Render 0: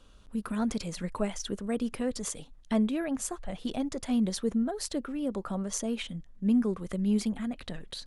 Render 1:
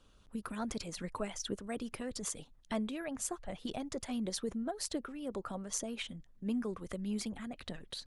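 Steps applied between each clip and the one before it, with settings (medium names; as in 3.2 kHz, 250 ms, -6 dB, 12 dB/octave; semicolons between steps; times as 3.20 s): harmonic-percussive split harmonic -8 dB; trim -2.5 dB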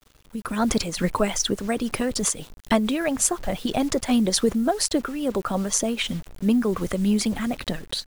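bit crusher 10-bit; level rider gain up to 11.5 dB; random flutter of the level, depth 60%; trim +7 dB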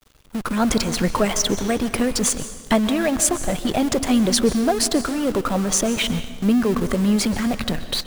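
in parallel at -7 dB: Schmitt trigger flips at -33 dBFS; on the sum: plate-style reverb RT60 1.2 s, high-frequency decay 0.85×, pre-delay 115 ms, DRR 12 dB; trim +1 dB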